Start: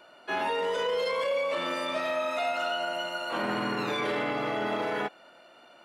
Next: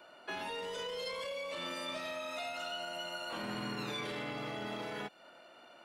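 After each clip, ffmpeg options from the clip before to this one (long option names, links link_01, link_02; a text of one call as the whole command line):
ffmpeg -i in.wav -filter_complex "[0:a]acrossover=split=190|3000[link_01][link_02][link_03];[link_02]acompressor=threshold=-38dB:ratio=6[link_04];[link_01][link_04][link_03]amix=inputs=3:normalize=0,volume=-2.5dB" out.wav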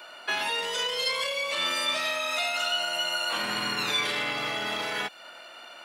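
ffmpeg -i in.wav -af "tiltshelf=frequency=730:gain=-8,volume=8dB" out.wav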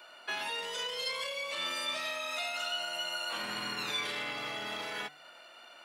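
ffmpeg -i in.wav -af "bandreject=frequency=149.5:width_type=h:width=4,bandreject=frequency=299:width_type=h:width=4,bandreject=frequency=448.5:width_type=h:width=4,bandreject=frequency=598:width_type=h:width=4,bandreject=frequency=747.5:width_type=h:width=4,bandreject=frequency=897:width_type=h:width=4,bandreject=frequency=1046.5:width_type=h:width=4,bandreject=frequency=1196:width_type=h:width=4,bandreject=frequency=1345.5:width_type=h:width=4,bandreject=frequency=1495:width_type=h:width=4,bandreject=frequency=1644.5:width_type=h:width=4,bandreject=frequency=1794:width_type=h:width=4,bandreject=frequency=1943.5:width_type=h:width=4,bandreject=frequency=2093:width_type=h:width=4,volume=-7.5dB" out.wav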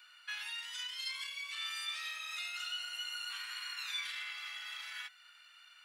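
ffmpeg -i in.wav -af "highpass=frequency=1400:width=0.5412,highpass=frequency=1400:width=1.3066,volume=-4dB" out.wav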